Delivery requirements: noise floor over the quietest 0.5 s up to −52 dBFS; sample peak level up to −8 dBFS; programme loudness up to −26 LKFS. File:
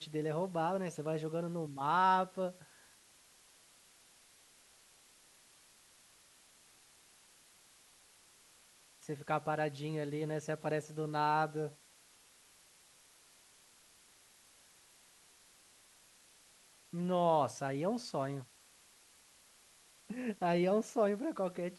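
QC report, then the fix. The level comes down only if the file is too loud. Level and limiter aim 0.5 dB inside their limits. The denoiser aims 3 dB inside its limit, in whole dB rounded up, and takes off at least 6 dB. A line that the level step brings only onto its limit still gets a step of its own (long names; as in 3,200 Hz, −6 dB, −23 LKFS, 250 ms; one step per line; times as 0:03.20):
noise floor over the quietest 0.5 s −64 dBFS: in spec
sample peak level −18.5 dBFS: in spec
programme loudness −35.5 LKFS: in spec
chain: no processing needed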